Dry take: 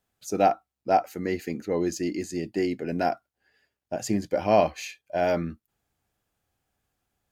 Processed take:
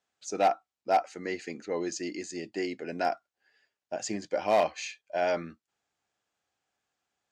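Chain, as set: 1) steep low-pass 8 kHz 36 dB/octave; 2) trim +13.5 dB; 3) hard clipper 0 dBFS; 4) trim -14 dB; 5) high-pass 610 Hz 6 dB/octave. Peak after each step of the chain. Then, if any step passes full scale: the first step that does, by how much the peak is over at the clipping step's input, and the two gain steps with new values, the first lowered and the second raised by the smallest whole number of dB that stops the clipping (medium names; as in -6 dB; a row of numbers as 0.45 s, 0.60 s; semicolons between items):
-8.5 dBFS, +5.0 dBFS, 0.0 dBFS, -14.0 dBFS, -13.0 dBFS; step 2, 5.0 dB; step 2 +8.5 dB, step 4 -9 dB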